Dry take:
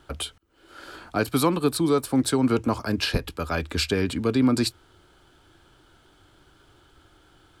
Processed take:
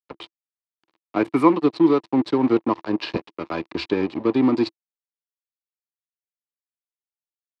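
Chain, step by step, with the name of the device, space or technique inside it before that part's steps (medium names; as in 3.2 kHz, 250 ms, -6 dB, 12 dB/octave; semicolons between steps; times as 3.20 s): 0.82–1.54 s: FFT filter 520 Hz 0 dB, 1.5 kHz +2 dB, 2.2 kHz +8 dB, 3.5 kHz -27 dB, 9.7 kHz +15 dB; blown loudspeaker (crossover distortion -31.5 dBFS; cabinet simulation 170–4100 Hz, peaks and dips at 330 Hz +10 dB, 1 kHz +7 dB, 1.5 kHz -7 dB, 3.3 kHz -4 dB); trim +2 dB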